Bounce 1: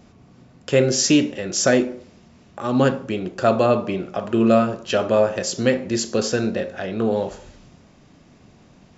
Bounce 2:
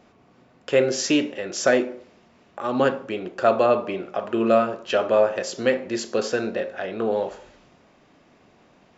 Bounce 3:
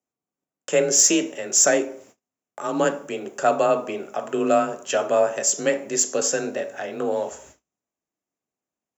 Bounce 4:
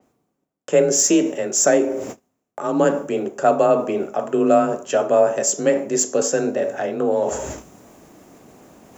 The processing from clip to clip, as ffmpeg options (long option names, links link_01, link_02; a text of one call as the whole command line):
ffmpeg -i in.wav -af "bass=frequency=250:gain=-13,treble=frequency=4000:gain=-9" out.wav
ffmpeg -i in.wav -af "afreqshift=29,agate=range=-34dB:threshold=-49dB:ratio=16:detection=peak,aexciter=amount=8:drive=8.7:freq=6400,volume=-1dB" out.wav
ffmpeg -i in.wav -af "tiltshelf=frequency=1300:gain=6,areverse,acompressor=mode=upward:threshold=-16dB:ratio=2.5,areverse,adynamicequalizer=threshold=0.0112:dfrequency=5400:dqfactor=0.7:tfrequency=5400:tqfactor=0.7:attack=5:release=100:ratio=0.375:range=2.5:mode=boostabove:tftype=highshelf" out.wav